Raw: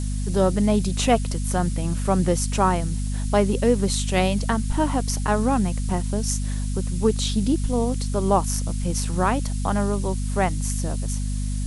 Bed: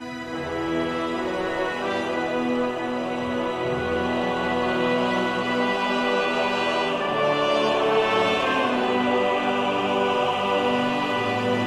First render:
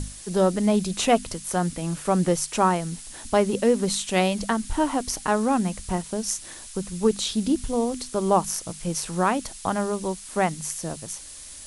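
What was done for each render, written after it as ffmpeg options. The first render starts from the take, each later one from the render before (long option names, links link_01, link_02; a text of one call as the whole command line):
ffmpeg -i in.wav -af "bandreject=frequency=50:width_type=h:width=6,bandreject=frequency=100:width_type=h:width=6,bandreject=frequency=150:width_type=h:width=6,bandreject=frequency=200:width_type=h:width=6,bandreject=frequency=250:width_type=h:width=6" out.wav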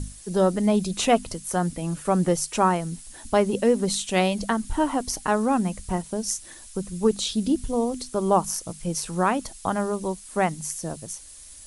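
ffmpeg -i in.wav -af "afftdn=noise_reduction=7:noise_floor=-42" out.wav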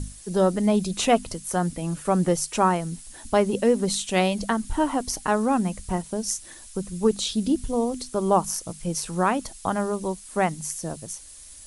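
ffmpeg -i in.wav -af anull out.wav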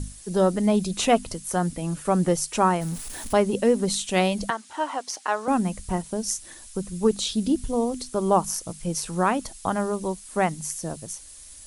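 ffmpeg -i in.wav -filter_complex "[0:a]asettb=1/sr,asplit=3[link_01][link_02][link_03];[link_01]atrim=end=2.814[link_04];[link_02]atrim=start=2.81:end=3.33,asetpts=PTS-STARTPTS,afade=type=in:duration=0.004:curve=qsin,afade=type=out:start_time=0.516:duration=0.004:curve=qsin,aeval=exprs='val(0)+0.5*0.02*sgn(val(0))':channel_layout=same[link_05];[link_03]atrim=start=3.326[link_06];[link_04][link_05]acrossfade=duration=0.004:curve1=hsin:curve2=qsin[link_07];[link_07][link_06]acrossfade=duration=0.004:curve1=qsin:curve2=hsin,asettb=1/sr,asplit=3[link_08][link_09][link_10];[link_08]atrim=end=4.504[link_11];[link_09]atrim=start=4.5:end=5.48,asetpts=PTS-STARTPTS,afade=type=in:duration=0.004:curve=qsin,afade=type=out:start_time=0.976:duration=0.004:curve=qsin,highpass=610,lowpass=6700[link_12];[link_10]atrim=start=5.476[link_13];[link_11][link_12]acrossfade=duration=0.004:curve1=hsin:curve2=qsin[link_14];[link_14][link_13]acrossfade=duration=0.004:curve1=qsin:curve2=hsin" out.wav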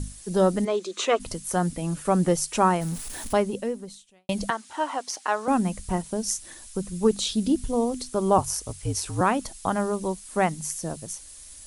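ffmpeg -i in.wav -filter_complex "[0:a]asplit=3[link_01][link_02][link_03];[link_01]afade=type=out:start_time=0.64:duration=0.02[link_04];[link_02]highpass=frequency=360:width=0.5412,highpass=frequency=360:width=1.3066,equalizer=frequency=370:width_type=q:width=4:gain=6,equalizer=frequency=770:width_type=q:width=4:gain=-10,equalizer=frequency=1200:width_type=q:width=4:gain=6,equalizer=frequency=2700:width_type=q:width=4:gain=-3,equalizer=frequency=5100:width_type=q:width=4:gain=-6,lowpass=frequency=7000:width=0.5412,lowpass=frequency=7000:width=1.3066,afade=type=in:start_time=0.64:duration=0.02,afade=type=out:start_time=1.19:duration=0.02[link_05];[link_03]afade=type=in:start_time=1.19:duration=0.02[link_06];[link_04][link_05][link_06]amix=inputs=3:normalize=0,asettb=1/sr,asplit=3[link_07][link_08][link_09];[link_07]atrim=end=8.384[link_10];[link_08]atrim=start=8.38:end=9.21,asetpts=PTS-STARTPTS,afade=type=in:duration=0.004:curve=qsin,afade=type=out:start_time=0.826:duration=0.004:curve=qsin,afreqshift=-60[link_11];[link_09]atrim=start=9.206[link_12];[link_10][link_11]acrossfade=duration=0.004:curve1=hsin:curve2=qsin[link_13];[link_13][link_12]acrossfade=duration=0.004:curve1=qsin:curve2=hsin,asplit=2[link_14][link_15];[link_14]atrim=end=4.29,asetpts=PTS-STARTPTS,afade=type=out:start_time=3.26:duration=1.03:curve=qua[link_16];[link_15]atrim=start=4.29,asetpts=PTS-STARTPTS,afade=type=in:duration=0.004:curve=hsin[link_17];[link_16][link_17]concat=n=2:v=0:a=1" out.wav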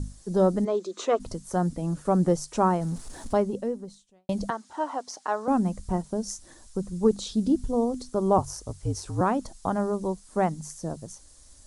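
ffmpeg -i in.wav -af "lowpass=5800,equalizer=frequency=2600:width=0.89:gain=-13" out.wav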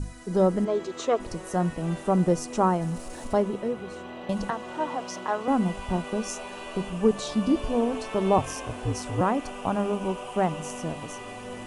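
ffmpeg -i in.wav -i bed.wav -filter_complex "[1:a]volume=-15.5dB[link_01];[0:a][link_01]amix=inputs=2:normalize=0" out.wav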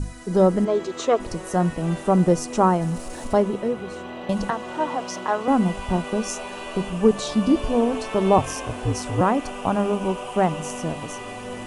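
ffmpeg -i in.wav -af "volume=4.5dB" out.wav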